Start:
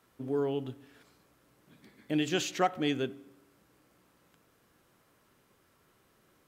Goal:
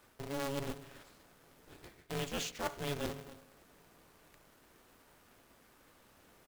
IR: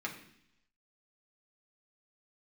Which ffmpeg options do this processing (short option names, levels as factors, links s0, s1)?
-filter_complex "[0:a]areverse,acompressor=threshold=0.0112:ratio=6,areverse,asplit=2[s0][s1];[s1]adelay=274.1,volume=0.1,highshelf=f=4000:g=-6.17[s2];[s0][s2]amix=inputs=2:normalize=0,acrusher=bits=2:mode=log:mix=0:aa=0.000001,aeval=exprs='val(0)*sgn(sin(2*PI*140*n/s))':c=same,volume=1.41"